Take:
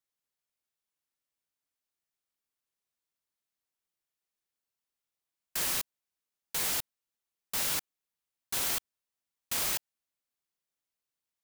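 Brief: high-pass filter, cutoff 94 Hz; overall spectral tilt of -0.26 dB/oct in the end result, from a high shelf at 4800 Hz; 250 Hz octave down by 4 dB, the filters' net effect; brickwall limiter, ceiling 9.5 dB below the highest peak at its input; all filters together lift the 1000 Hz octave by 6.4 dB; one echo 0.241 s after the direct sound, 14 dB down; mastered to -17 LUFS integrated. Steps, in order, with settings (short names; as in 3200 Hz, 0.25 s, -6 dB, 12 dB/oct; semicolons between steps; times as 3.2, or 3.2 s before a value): HPF 94 Hz; bell 250 Hz -6 dB; bell 1000 Hz +8.5 dB; high shelf 4800 Hz -5 dB; limiter -29 dBFS; echo 0.241 s -14 dB; gain +24 dB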